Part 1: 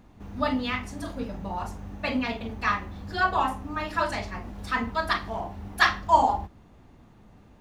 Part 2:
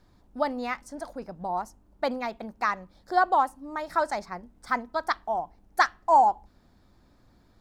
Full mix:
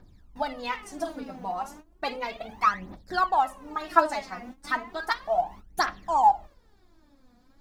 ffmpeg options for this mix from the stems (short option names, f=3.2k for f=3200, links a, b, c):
-filter_complex "[0:a]highpass=220,acompressor=threshold=-33dB:ratio=3,volume=-4.5dB[a];[1:a]volume=-3.5dB,asplit=2[b][c];[c]apad=whole_len=335475[d];[a][d]sidechaingate=range=-33dB:threshold=-53dB:ratio=16:detection=peak[e];[e][b]amix=inputs=2:normalize=0,aphaser=in_gain=1:out_gain=1:delay=4.2:decay=0.75:speed=0.34:type=triangular"